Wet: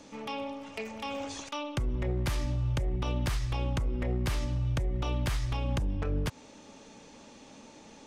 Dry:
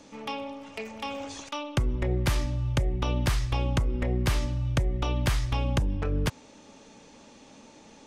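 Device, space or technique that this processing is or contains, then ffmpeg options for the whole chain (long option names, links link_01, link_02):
limiter into clipper: -af "alimiter=limit=-22.5dB:level=0:latency=1:release=132,asoftclip=type=hard:threshold=-24dB"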